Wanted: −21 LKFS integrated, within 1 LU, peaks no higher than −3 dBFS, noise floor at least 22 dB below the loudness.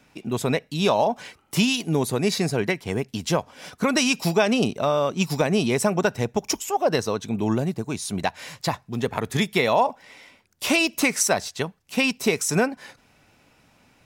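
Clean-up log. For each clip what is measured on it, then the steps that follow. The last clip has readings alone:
integrated loudness −23.5 LKFS; sample peak −7.5 dBFS; target loudness −21.0 LKFS
→ level +2.5 dB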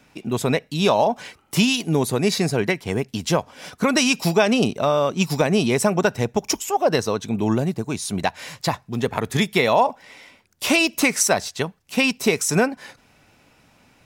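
integrated loudness −21.0 LKFS; sample peak −5.0 dBFS; background noise floor −57 dBFS

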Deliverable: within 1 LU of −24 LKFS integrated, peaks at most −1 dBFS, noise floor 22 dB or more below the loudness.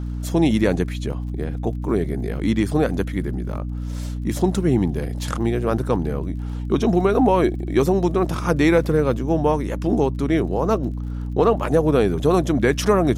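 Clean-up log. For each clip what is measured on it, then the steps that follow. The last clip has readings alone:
crackle rate 33 per second; mains hum 60 Hz; hum harmonics up to 300 Hz; level of the hum −24 dBFS; integrated loudness −21.0 LKFS; sample peak −5.5 dBFS; target loudness −24.0 LKFS
→ click removal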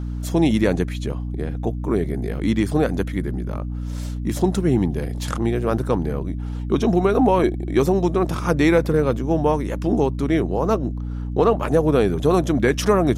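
crackle rate 0.076 per second; mains hum 60 Hz; hum harmonics up to 300 Hz; level of the hum −24 dBFS
→ hum removal 60 Hz, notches 5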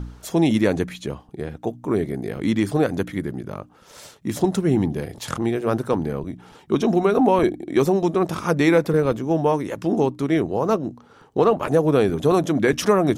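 mains hum none found; integrated loudness −21.5 LKFS; sample peak −4.5 dBFS; target loudness −24.0 LKFS
→ level −2.5 dB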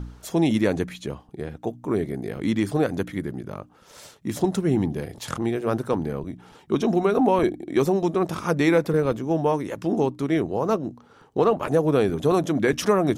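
integrated loudness −24.0 LKFS; sample peak −7.0 dBFS; background noise floor −53 dBFS

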